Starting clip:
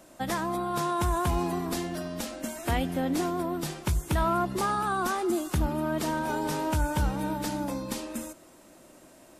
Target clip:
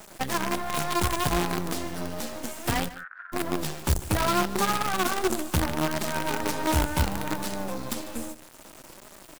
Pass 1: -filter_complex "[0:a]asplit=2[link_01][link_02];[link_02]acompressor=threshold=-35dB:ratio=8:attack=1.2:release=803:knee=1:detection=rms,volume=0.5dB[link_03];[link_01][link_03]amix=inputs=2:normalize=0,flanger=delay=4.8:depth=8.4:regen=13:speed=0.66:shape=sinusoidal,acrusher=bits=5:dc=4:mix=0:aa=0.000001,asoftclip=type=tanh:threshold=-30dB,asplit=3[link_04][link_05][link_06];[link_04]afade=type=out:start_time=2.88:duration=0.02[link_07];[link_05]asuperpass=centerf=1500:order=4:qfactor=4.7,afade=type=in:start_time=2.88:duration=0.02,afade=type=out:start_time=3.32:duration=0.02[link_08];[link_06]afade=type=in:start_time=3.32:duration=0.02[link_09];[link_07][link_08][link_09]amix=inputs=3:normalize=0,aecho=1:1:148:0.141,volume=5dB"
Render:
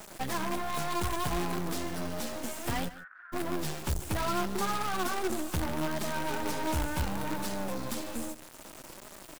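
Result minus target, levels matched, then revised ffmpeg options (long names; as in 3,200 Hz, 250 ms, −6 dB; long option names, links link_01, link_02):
soft clipping: distortion +11 dB
-filter_complex "[0:a]asplit=2[link_01][link_02];[link_02]acompressor=threshold=-35dB:ratio=8:attack=1.2:release=803:knee=1:detection=rms,volume=0.5dB[link_03];[link_01][link_03]amix=inputs=2:normalize=0,flanger=delay=4.8:depth=8.4:regen=13:speed=0.66:shape=sinusoidal,acrusher=bits=5:dc=4:mix=0:aa=0.000001,asoftclip=type=tanh:threshold=-19dB,asplit=3[link_04][link_05][link_06];[link_04]afade=type=out:start_time=2.88:duration=0.02[link_07];[link_05]asuperpass=centerf=1500:order=4:qfactor=4.7,afade=type=in:start_time=2.88:duration=0.02,afade=type=out:start_time=3.32:duration=0.02[link_08];[link_06]afade=type=in:start_time=3.32:duration=0.02[link_09];[link_07][link_08][link_09]amix=inputs=3:normalize=0,aecho=1:1:148:0.141,volume=5dB"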